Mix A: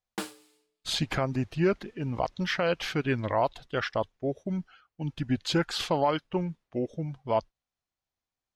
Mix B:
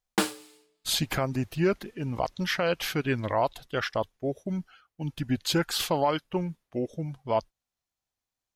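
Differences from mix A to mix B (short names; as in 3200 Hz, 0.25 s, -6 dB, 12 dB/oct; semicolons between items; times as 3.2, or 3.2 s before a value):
speech: remove air absorption 75 m; background +9.5 dB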